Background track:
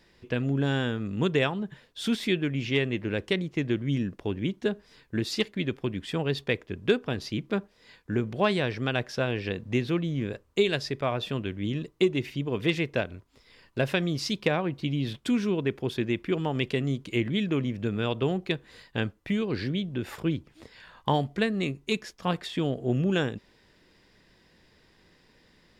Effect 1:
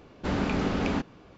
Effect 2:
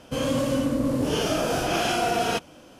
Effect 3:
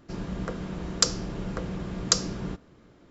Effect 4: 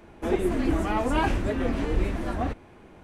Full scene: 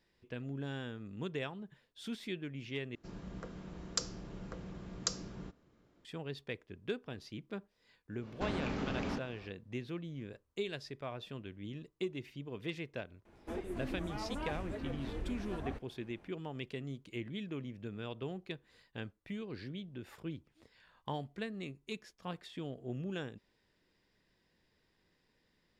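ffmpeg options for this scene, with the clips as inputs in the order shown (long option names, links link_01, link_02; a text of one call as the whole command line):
ffmpeg -i bed.wav -i cue0.wav -i cue1.wav -i cue2.wav -i cue3.wav -filter_complex "[0:a]volume=-14.5dB[link_01];[1:a]acompressor=threshold=-31dB:ratio=6:attack=3.2:release=140:knee=1:detection=peak[link_02];[4:a]alimiter=limit=-18.5dB:level=0:latency=1:release=393[link_03];[link_01]asplit=2[link_04][link_05];[link_04]atrim=end=2.954[link_06];[3:a]atrim=end=3.1,asetpts=PTS-STARTPTS,volume=-13dB[link_07];[link_05]atrim=start=6.046[link_08];[link_02]atrim=end=1.37,asetpts=PTS-STARTPTS,volume=-2.5dB,afade=type=in:duration=0.1,afade=type=out:start_time=1.27:duration=0.1,adelay=8170[link_09];[link_03]atrim=end=3.03,asetpts=PTS-STARTPTS,volume=-12.5dB,afade=type=in:duration=0.004:curve=hsin,afade=type=out:start_time=3.026:duration=0.004:curve=hsin,adelay=13250[link_10];[link_06][link_07]acrossfade=duration=0.004:curve1=hsin:curve2=hsin[link_11];[link_11][link_08]acrossfade=duration=0.004:curve1=hsin:curve2=hsin[link_12];[link_12][link_09][link_10]amix=inputs=3:normalize=0" out.wav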